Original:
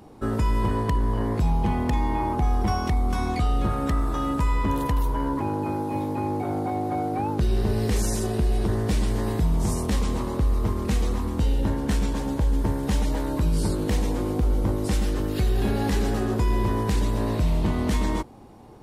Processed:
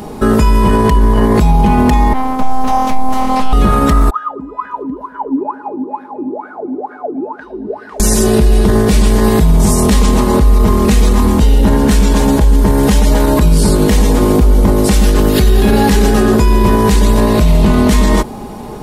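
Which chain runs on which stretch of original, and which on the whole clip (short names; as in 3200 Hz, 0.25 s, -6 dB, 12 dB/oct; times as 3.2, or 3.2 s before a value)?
2.13–3.53 resonator 57 Hz, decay 0.23 s, harmonics odd, mix 80% + robotiser 260 Hz + Doppler distortion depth 0.38 ms
4.1–8 wah 2.2 Hz 260–1600 Hz, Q 21 + dark delay 0.112 s, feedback 77%, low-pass 950 Hz, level -18 dB
whole clip: high shelf 6900 Hz +5 dB; comb 4.8 ms, depth 46%; maximiser +21 dB; gain -1 dB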